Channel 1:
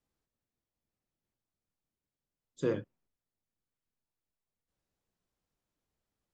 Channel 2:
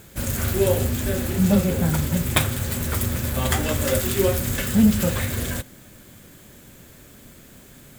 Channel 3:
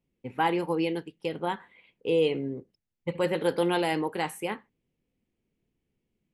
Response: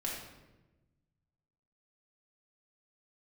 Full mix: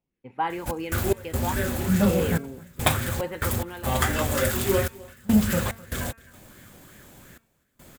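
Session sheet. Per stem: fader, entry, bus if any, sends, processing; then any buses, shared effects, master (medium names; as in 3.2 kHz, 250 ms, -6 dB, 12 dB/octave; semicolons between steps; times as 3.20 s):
-15.0 dB, 0.15 s, no send, no echo send, none
-3.0 dB, 0.50 s, no send, echo send -23 dB, trance gate "x.x.xxxxx..x" 72 bpm -24 dB
3.21 s -6 dB -> 3.83 s -15.5 dB, 0.00 s, no send, no echo send, treble shelf 8.6 kHz -9 dB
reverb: none
echo: delay 258 ms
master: de-hum 226.9 Hz, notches 12; sweeping bell 2.8 Hz 740–1800 Hz +9 dB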